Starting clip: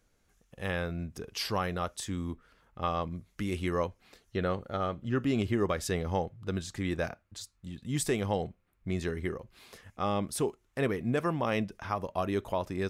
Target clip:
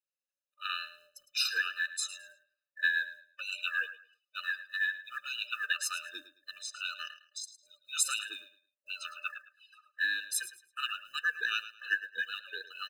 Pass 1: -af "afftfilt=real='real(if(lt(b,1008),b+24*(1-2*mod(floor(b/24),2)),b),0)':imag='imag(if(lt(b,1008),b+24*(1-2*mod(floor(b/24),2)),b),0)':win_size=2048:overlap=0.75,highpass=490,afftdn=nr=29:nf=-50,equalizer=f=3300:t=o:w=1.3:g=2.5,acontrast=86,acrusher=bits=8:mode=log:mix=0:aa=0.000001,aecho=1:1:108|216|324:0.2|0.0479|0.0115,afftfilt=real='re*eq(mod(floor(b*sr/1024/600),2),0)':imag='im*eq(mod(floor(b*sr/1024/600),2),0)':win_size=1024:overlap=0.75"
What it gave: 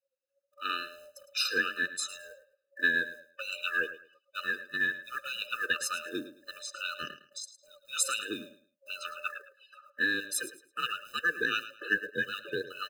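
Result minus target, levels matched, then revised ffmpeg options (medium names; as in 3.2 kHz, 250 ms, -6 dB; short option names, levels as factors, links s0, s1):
500 Hz band +17.5 dB
-af "afftfilt=real='real(if(lt(b,1008),b+24*(1-2*mod(floor(b/24),2)),b),0)':imag='imag(if(lt(b,1008),b+24*(1-2*mod(floor(b/24),2)),b),0)':win_size=2048:overlap=0.75,highpass=1500,afftdn=nr=29:nf=-50,equalizer=f=3300:t=o:w=1.3:g=2.5,acontrast=86,acrusher=bits=8:mode=log:mix=0:aa=0.000001,aecho=1:1:108|216|324:0.2|0.0479|0.0115,afftfilt=real='re*eq(mod(floor(b*sr/1024/600),2),0)':imag='im*eq(mod(floor(b*sr/1024/600),2),0)':win_size=1024:overlap=0.75"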